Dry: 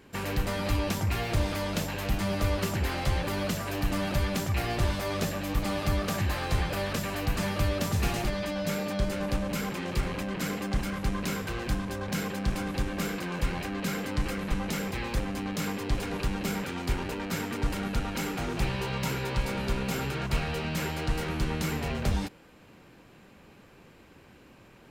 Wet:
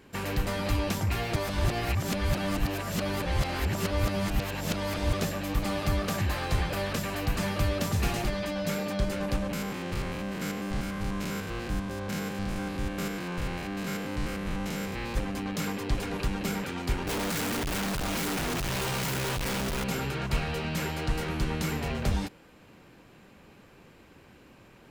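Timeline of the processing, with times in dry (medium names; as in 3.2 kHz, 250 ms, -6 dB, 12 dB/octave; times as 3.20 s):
1.36–5.13 s: reverse
9.53–15.17 s: spectrogram pixelated in time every 100 ms
17.07–19.84 s: one-bit comparator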